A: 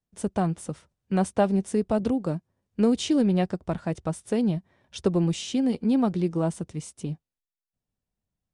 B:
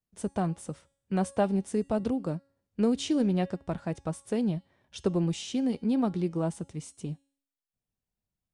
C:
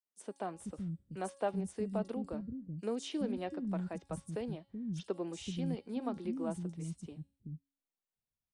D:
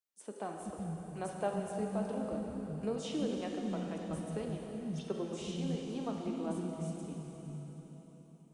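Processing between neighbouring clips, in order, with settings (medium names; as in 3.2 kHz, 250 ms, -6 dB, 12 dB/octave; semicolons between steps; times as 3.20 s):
de-hum 276.6 Hz, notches 36; trim -4 dB
three bands offset in time highs, mids, lows 40/420 ms, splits 250/5200 Hz; trim -7 dB
plate-style reverb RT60 4.3 s, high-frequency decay 1×, DRR 0.5 dB; trim -1.5 dB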